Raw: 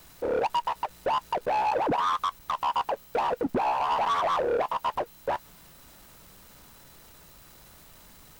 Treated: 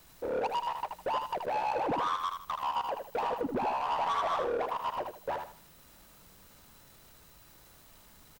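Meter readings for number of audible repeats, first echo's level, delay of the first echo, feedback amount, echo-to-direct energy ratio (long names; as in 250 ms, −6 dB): 3, −6.0 dB, 78 ms, 29%, −5.5 dB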